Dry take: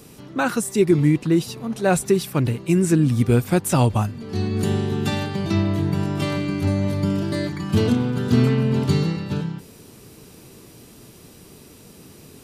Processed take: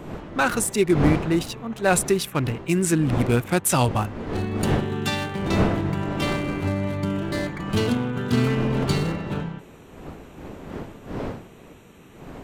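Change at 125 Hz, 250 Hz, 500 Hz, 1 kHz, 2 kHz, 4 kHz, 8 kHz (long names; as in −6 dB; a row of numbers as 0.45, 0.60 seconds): −4.0, −3.0, −1.5, +1.5, +2.5, +1.0, +3.0 decibels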